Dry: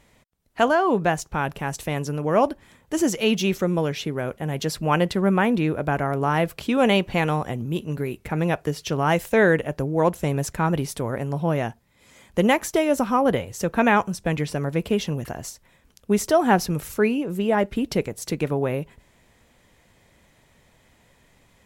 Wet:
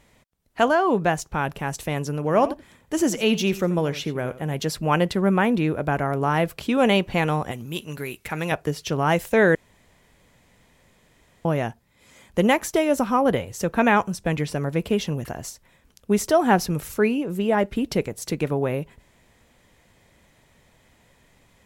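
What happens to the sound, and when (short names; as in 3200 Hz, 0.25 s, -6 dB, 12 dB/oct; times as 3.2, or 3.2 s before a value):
2.16–4.54 echo 86 ms -15.5 dB
7.51–8.52 tilt shelf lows -7 dB
9.55–11.45 room tone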